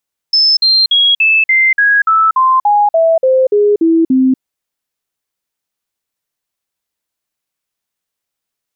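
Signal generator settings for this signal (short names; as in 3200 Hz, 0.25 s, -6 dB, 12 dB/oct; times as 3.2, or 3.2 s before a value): stepped sine 5250 Hz down, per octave 3, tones 14, 0.24 s, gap 0.05 s -6.5 dBFS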